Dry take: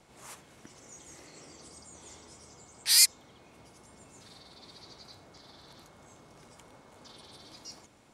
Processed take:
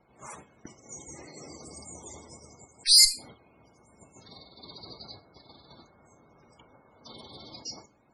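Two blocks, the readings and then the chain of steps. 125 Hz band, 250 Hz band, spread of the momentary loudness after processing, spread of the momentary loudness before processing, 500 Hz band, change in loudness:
+4.0 dB, +4.5 dB, 18 LU, 10 LU, +4.0 dB, +3.0 dB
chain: gate -52 dBFS, range -11 dB; Schroeder reverb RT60 0.32 s, combs from 27 ms, DRR 12.5 dB; added harmonics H 2 -8 dB, 5 -16 dB, 6 -26 dB, 8 -13 dB, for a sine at -5.5 dBFS; loudest bins only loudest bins 64; gain +2.5 dB

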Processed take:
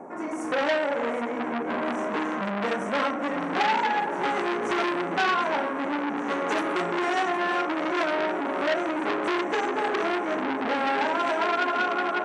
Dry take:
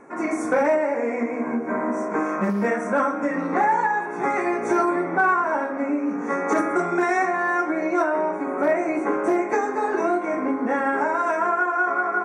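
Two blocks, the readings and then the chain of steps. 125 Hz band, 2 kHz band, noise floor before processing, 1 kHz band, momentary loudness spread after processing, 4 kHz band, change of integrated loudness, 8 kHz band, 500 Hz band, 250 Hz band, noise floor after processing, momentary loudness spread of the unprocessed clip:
-5.5 dB, -2.5 dB, -29 dBFS, -3.0 dB, 4 LU, n/a, -3.5 dB, -3.5 dB, -4.5 dB, -5.0 dB, -31 dBFS, 5 LU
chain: dynamic EQ 2400 Hz, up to -6 dB, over -38 dBFS, Q 1.2; AGC gain up to 6 dB; resonator 410 Hz, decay 0.61 s, mix 60%; band noise 190–900 Hz -44 dBFS; on a send: echo with dull and thin repeats by turns 0.38 s, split 1400 Hz, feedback 87%, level -12.5 dB; on the sum: core saturation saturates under 2300 Hz; gain +2 dB

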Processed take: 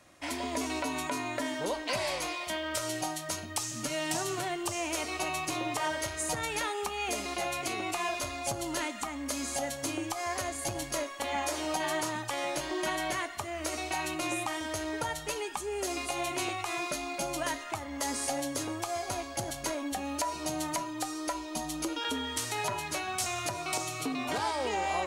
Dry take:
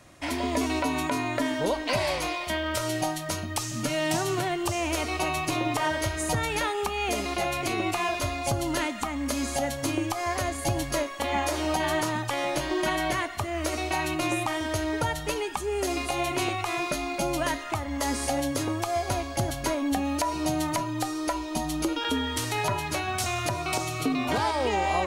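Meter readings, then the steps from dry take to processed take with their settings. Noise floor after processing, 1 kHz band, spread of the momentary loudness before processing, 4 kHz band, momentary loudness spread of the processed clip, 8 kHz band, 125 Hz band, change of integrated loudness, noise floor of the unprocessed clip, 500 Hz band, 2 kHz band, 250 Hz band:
-41 dBFS, -5.0 dB, 3 LU, -4.0 dB, 3 LU, -1.0 dB, -11.5 dB, -5.0 dB, -35 dBFS, -6.0 dB, -4.5 dB, -7.5 dB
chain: dynamic EQ 7800 Hz, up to +5 dB, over -47 dBFS, Q 1; flange 0.14 Hz, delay 3.6 ms, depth 4.2 ms, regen -83%; low shelf 200 Hz -8 dB; core saturation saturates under 680 Hz

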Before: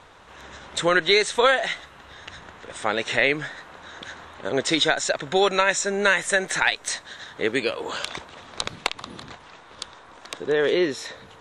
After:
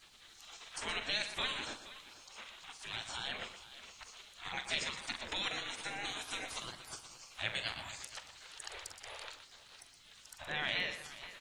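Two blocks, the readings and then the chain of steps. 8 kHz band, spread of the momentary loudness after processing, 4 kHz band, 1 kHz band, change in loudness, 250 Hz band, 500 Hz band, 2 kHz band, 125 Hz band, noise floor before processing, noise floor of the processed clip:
-15.5 dB, 17 LU, -11.5 dB, -18.0 dB, -17.0 dB, -23.5 dB, -26.5 dB, -16.5 dB, -15.5 dB, -48 dBFS, -60 dBFS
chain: in parallel at -1 dB: limiter -12.5 dBFS, peak gain reduction 8 dB; on the sum: EQ curve 110 Hz 0 dB, 170 Hz +9 dB, 1100 Hz -8 dB, 1600 Hz -6 dB, 2400 Hz +2 dB, 5800 Hz -9 dB, 12000 Hz -5 dB; compressor 1.5:1, threshold -37 dBFS, peak gain reduction 9.5 dB; spectral gate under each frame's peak -20 dB weak; added noise pink -74 dBFS; on a send: tapped delay 44/120/473 ms -11.5/-10.5/-16 dB; on the sum: gain +1 dB

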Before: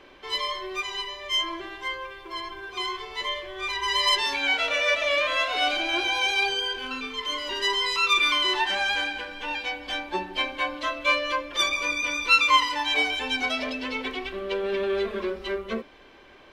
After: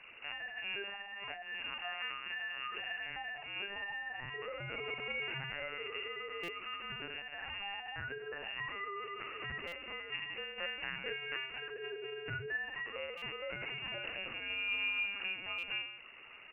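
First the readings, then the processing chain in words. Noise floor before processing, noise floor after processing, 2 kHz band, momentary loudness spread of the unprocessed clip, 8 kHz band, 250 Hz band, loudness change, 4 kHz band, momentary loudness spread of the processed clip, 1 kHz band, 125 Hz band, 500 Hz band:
-51 dBFS, -50 dBFS, -12.0 dB, 11 LU, under -35 dB, -19.5 dB, -14.5 dB, -17.5 dB, 5 LU, -19.0 dB, n/a, -15.0 dB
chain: rattling part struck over -46 dBFS, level -28 dBFS; low shelf 260 Hz -7 dB; compressor 5:1, threshold -36 dBFS, peak gain reduction 19 dB; air absorption 480 m; reverse bouncing-ball echo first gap 40 ms, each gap 1.1×, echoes 5; LPC vocoder at 8 kHz pitch kept; inverted band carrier 2800 Hz; stuck buffer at 6.43/9.67/13.17/15.58, samples 256, times 8; gain -1.5 dB

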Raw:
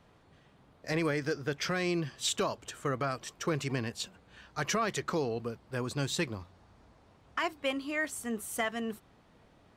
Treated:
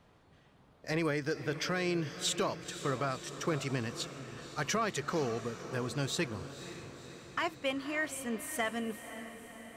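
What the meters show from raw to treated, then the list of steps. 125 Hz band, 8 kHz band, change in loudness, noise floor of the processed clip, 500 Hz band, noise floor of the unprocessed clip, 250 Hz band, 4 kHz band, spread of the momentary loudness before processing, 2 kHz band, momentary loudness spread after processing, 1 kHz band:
-1.0 dB, -1.0 dB, -1.5 dB, -63 dBFS, -1.0 dB, -63 dBFS, -1.0 dB, -1.0 dB, 8 LU, -1.0 dB, 13 LU, -1.0 dB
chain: diffused feedback echo 0.52 s, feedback 61%, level -12 dB; gain -1.5 dB

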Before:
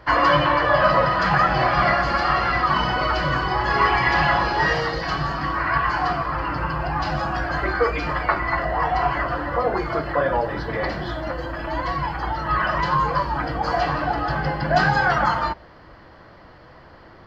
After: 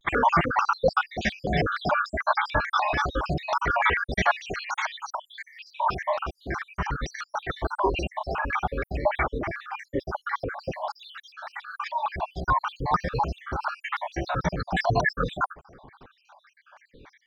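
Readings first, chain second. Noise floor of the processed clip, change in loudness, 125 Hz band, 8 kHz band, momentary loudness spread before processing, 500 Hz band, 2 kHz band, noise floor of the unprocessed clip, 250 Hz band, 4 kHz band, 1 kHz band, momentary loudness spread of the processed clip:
-68 dBFS, -6.0 dB, -6.5 dB, n/a, 8 LU, -6.0 dB, -6.5 dB, -47 dBFS, -5.5 dB, -7.5 dB, -6.5 dB, 12 LU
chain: random spectral dropouts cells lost 75%; shaped vibrato square 3.4 Hz, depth 250 cents

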